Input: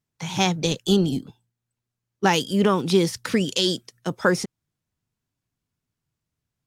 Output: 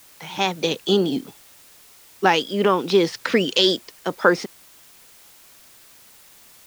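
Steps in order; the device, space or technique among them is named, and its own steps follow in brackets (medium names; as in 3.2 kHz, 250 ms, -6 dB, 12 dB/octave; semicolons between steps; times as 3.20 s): dictaphone (band-pass 310–4000 Hz; level rider; wow and flutter; white noise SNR 26 dB); trim -1 dB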